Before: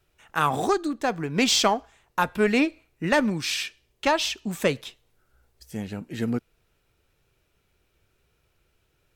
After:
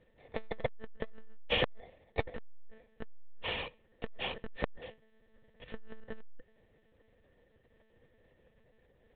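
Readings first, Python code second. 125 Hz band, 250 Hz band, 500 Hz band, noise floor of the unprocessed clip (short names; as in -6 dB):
-12.5 dB, -22.0 dB, -13.5 dB, -70 dBFS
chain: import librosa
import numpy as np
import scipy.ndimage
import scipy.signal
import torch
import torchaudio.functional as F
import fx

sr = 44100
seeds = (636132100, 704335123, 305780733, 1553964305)

y = fx.bit_reversed(x, sr, seeds[0], block=32)
y = fx.lpc_monotone(y, sr, seeds[1], pitch_hz=220.0, order=10)
y = fx.small_body(y, sr, hz=(500.0, 1800.0), ring_ms=30, db=15)
y = fx.transformer_sat(y, sr, knee_hz=470.0)
y = y * librosa.db_to_amplitude(1.0)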